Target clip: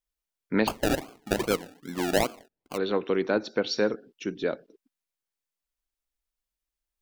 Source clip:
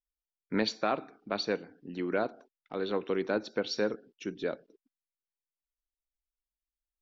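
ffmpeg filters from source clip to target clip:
ffmpeg -i in.wav -filter_complex "[0:a]asplit=3[link_01][link_02][link_03];[link_01]afade=type=out:start_time=0.66:duration=0.02[link_04];[link_02]acrusher=samples=33:mix=1:aa=0.000001:lfo=1:lforange=19.8:lforate=2.5,afade=type=in:start_time=0.66:duration=0.02,afade=type=out:start_time=2.76:duration=0.02[link_05];[link_03]afade=type=in:start_time=2.76:duration=0.02[link_06];[link_04][link_05][link_06]amix=inputs=3:normalize=0,volume=5dB" out.wav

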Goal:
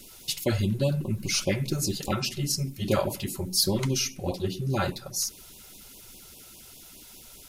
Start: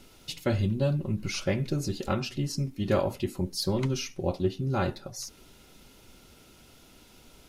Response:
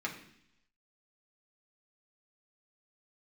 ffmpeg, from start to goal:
-filter_complex "[0:a]crystalizer=i=3:c=0,asplit=2[link_01][link_02];[1:a]atrim=start_sample=2205,lowpass=2200[link_03];[link_02][link_03]afir=irnorm=-1:irlink=0,volume=-13dB[link_04];[link_01][link_04]amix=inputs=2:normalize=0,afftfilt=real='re*(1-between(b*sr/1024,230*pow(1700/230,0.5+0.5*sin(2*PI*4.9*pts/sr))/1.41,230*pow(1700/230,0.5+0.5*sin(2*PI*4.9*pts/sr))*1.41))':imag='im*(1-between(b*sr/1024,230*pow(1700/230,0.5+0.5*sin(2*PI*4.9*pts/sr))/1.41,230*pow(1700/230,0.5+0.5*sin(2*PI*4.9*pts/sr))*1.41))':win_size=1024:overlap=0.75"

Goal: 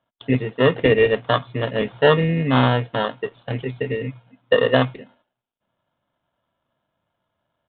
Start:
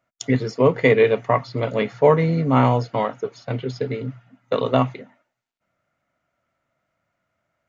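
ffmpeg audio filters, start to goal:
ffmpeg -i in.wav -filter_complex "[0:a]asettb=1/sr,asplit=3[link_01][link_02][link_03];[link_01]atrim=end=3.904[link_04];[link_02]atrim=start=3.9:end=4.86,asetpts=PTS-STARTPTS,afade=type=in:duration=0.004:curve=qsin,afade=type=out:start_time=0.956:duration=0.004:curve=qsin,equalizer=frequency=490:width_type=o:width=0.28:gain=9[link_05];[link_03]atrim=start=4.856[link_06];[link_04][link_05]acrossfade=duration=0.004:curve1=hsin:curve2=qsin[link_07];[link_07][link_06]acrossfade=duration=0.004:curve1=qsin:curve2=hsin,acrossover=split=2400[link_08][link_09];[link_08]acrusher=samples=19:mix=1:aa=0.000001[link_10];[link_10][link_09]amix=inputs=2:normalize=0,aresample=8000,aresample=44100" out.wav

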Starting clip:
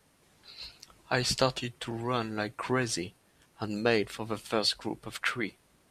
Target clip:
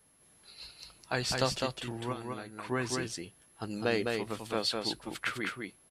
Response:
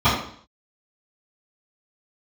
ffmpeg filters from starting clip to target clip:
-filter_complex "[0:a]asplit=3[link_01][link_02][link_03];[link_01]afade=type=out:start_time=2.12:duration=0.02[link_04];[link_02]acompressor=threshold=-35dB:ratio=6,afade=type=in:start_time=2.12:duration=0.02,afade=type=out:start_time=2.7:duration=0.02[link_05];[link_03]afade=type=in:start_time=2.7:duration=0.02[link_06];[link_04][link_05][link_06]amix=inputs=3:normalize=0,aeval=exprs='val(0)+0.000891*sin(2*PI*11000*n/s)':channel_layout=same,aecho=1:1:206:0.668,volume=-4dB"

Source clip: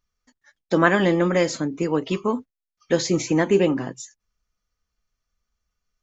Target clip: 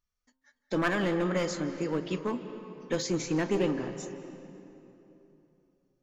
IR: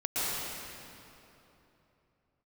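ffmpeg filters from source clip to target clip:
-filter_complex "[0:a]aeval=exprs='clip(val(0),-1,0.15)':channel_layout=same,bandreject=frequency=131.5:width_type=h:width=4,bandreject=frequency=263:width_type=h:width=4,bandreject=frequency=394.5:width_type=h:width=4,bandreject=frequency=526:width_type=h:width=4,bandreject=frequency=657.5:width_type=h:width=4,bandreject=frequency=789:width_type=h:width=4,bandreject=frequency=920.5:width_type=h:width=4,bandreject=frequency=1052:width_type=h:width=4,bandreject=frequency=1183.5:width_type=h:width=4,bandreject=frequency=1315:width_type=h:width=4,bandreject=frequency=1446.5:width_type=h:width=4,bandreject=frequency=1578:width_type=h:width=4,asplit=2[link_01][link_02];[1:a]atrim=start_sample=2205,lowpass=5300,adelay=38[link_03];[link_02][link_03]afir=irnorm=-1:irlink=0,volume=-19dB[link_04];[link_01][link_04]amix=inputs=2:normalize=0,volume=-8dB"

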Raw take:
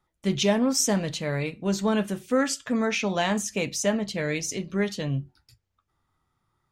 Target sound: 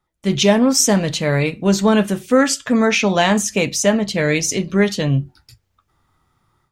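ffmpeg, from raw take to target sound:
ffmpeg -i in.wav -af "dynaudnorm=framelen=170:gausssize=3:maxgain=11dB" out.wav

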